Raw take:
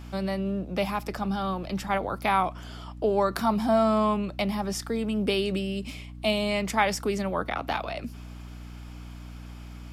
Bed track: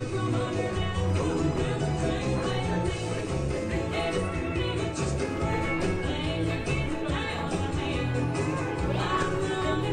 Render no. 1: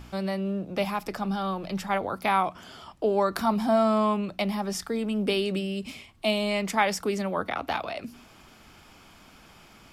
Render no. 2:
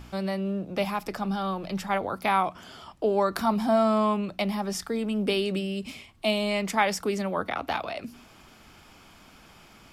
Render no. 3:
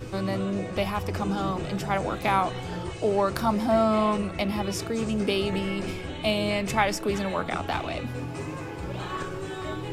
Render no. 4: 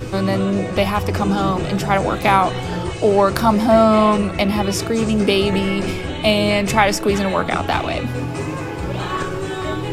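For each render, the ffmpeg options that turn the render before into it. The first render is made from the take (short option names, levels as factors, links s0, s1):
-af "bandreject=f=60:t=h:w=4,bandreject=f=120:t=h:w=4,bandreject=f=180:t=h:w=4,bandreject=f=240:t=h:w=4,bandreject=f=300:t=h:w=4"
-af anull
-filter_complex "[1:a]volume=0.501[s0];[0:a][s0]amix=inputs=2:normalize=0"
-af "volume=2.99,alimiter=limit=0.794:level=0:latency=1"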